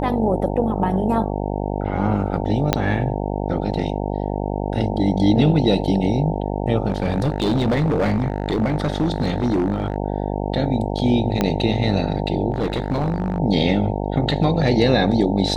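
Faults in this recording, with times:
buzz 50 Hz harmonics 18 -24 dBFS
2.73 s: pop -1 dBFS
6.88–9.96 s: clipped -15 dBFS
11.41 s: pop -5 dBFS
12.50–13.38 s: clipped -16.5 dBFS

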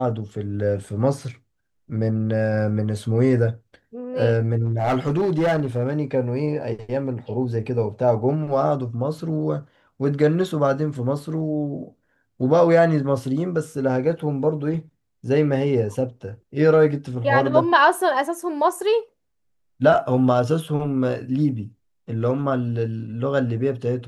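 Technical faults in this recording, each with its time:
4.64–5.91 s: clipped -16 dBFS

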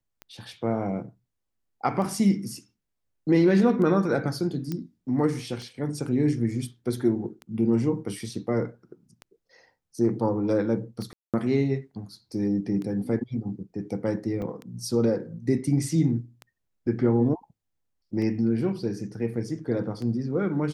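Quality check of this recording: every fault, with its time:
tick 33 1/3 rpm -24 dBFS
4.72 s: pop -18 dBFS
11.13–11.34 s: dropout 207 ms
14.42 s: dropout 2.2 ms

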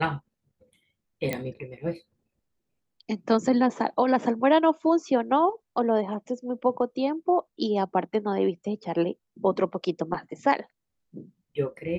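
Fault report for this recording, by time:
1.33 s: pop -14 dBFS

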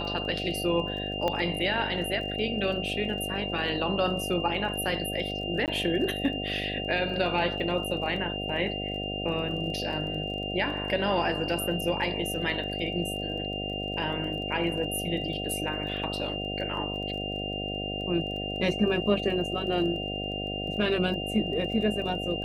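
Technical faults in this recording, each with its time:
buzz 50 Hz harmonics 15 -35 dBFS
crackle 20 per s -39 dBFS
whine 2.8 kHz -34 dBFS
1.28 s: pop -15 dBFS
5.66–5.68 s: dropout 18 ms

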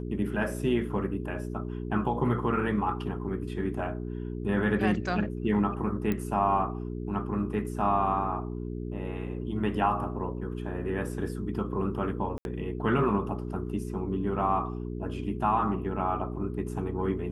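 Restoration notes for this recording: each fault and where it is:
hum 60 Hz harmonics 7 -35 dBFS
6.12 s: pop -17 dBFS
12.38–12.45 s: dropout 71 ms

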